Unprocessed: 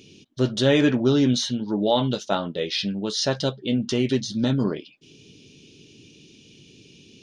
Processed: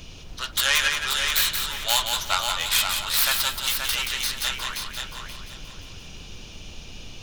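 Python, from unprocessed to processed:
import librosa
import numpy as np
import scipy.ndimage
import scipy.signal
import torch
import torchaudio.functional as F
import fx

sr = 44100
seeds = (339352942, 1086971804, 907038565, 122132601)

y = fx.tracing_dist(x, sr, depth_ms=0.22)
y = scipy.signal.sosfilt(scipy.signal.butter(4, 1100.0, 'highpass', fs=sr, output='sos'), y)
y = fx.dmg_noise_colour(y, sr, seeds[0], colour='brown', level_db=-47.0)
y = fx.echo_heads(y, sr, ms=176, heads='first and third', feedback_pct=42, wet_db=-6)
y = y * 10.0 ** (6.5 / 20.0)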